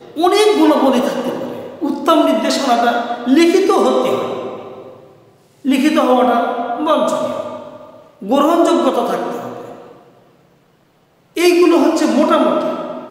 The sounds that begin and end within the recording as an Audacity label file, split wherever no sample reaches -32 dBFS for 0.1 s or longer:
5.650000	7.970000	sound
8.220000	9.970000	sound